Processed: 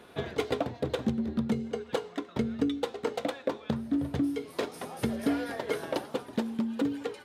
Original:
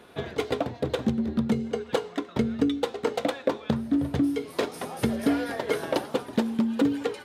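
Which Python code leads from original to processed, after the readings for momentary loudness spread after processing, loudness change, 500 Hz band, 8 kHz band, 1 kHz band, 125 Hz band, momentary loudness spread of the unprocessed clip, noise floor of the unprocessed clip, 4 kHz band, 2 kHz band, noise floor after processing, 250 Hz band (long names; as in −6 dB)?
4 LU, −4.5 dB, −4.5 dB, −4.5 dB, −4.5 dB, −4.0 dB, 5 LU, −46 dBFS, −4.5 dB, −4.5 dB, −51 dBFS, −4.5 dB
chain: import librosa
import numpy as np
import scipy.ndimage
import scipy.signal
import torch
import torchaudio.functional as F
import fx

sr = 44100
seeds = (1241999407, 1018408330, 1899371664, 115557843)

y = fx.rider(x, sr, range_db=10, speed_s=2.0)
y = F.gain(torch.from_numpy(y), -5.0).numpy()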